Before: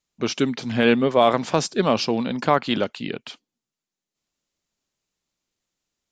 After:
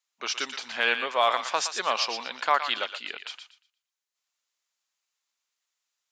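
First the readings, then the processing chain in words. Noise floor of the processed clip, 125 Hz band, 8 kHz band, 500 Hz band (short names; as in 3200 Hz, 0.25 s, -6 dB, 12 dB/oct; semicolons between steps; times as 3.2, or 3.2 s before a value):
under -85 dBFS, under -30 dB, 0.0 dB, -11.0 dB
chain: Chebyshev high-pass 1100 Hz, order 2; thinning echo 0.118 s, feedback 26%, high-pass 1200 Hz, level -7 dB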